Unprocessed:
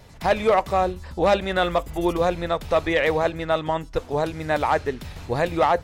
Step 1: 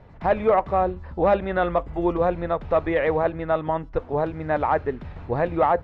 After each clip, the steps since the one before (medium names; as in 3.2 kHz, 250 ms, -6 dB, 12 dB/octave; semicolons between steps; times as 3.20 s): low-pass 1.6 kHz 12 dB/octave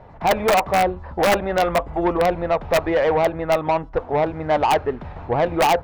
integer overflow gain 11.5 dB; peaking EQ 800 Hz +9 dB 1.4 oct; saturation -14 dBFS, distortion -11 dB; trim +1.5 dB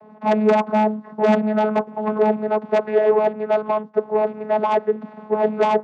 vocoder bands 16, saw 214 Hz; trim +1.5 dB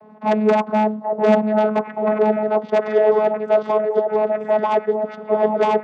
repeats whose band climbs or falls 791 ms, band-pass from 610 Hz, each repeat 1.4 oct, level -2.5 dB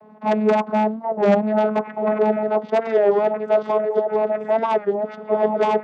warped record 33 1/3 rpm, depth 100 cents; trim -1.5 dB